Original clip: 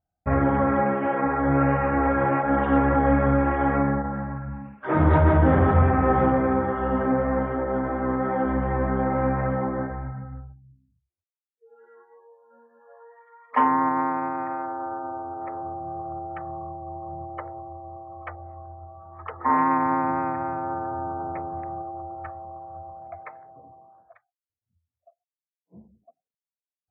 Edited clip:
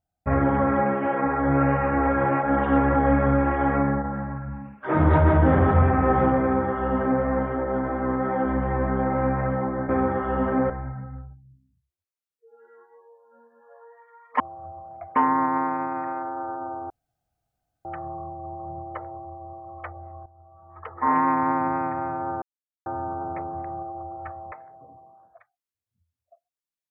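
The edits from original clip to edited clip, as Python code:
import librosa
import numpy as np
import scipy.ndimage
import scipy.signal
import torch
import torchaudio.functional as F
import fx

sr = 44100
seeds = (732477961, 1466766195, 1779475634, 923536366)

y = fx.edit(x, sr, fx.duplicate(start_s=6.42, length_s=0.81, to_s=9.89),
    fx.room_tone_fill(start_s=15.33, length_s=0.95),
    fx.fade_in_from(start_s=18.69, length_s=0.9, floor_db=-15.0),
    fx.insert_silence(at_s=20.85, length_s=0.44),
    fx.move(start_s=22.51, length_s=0.76, to_s=13.59), tone=tone)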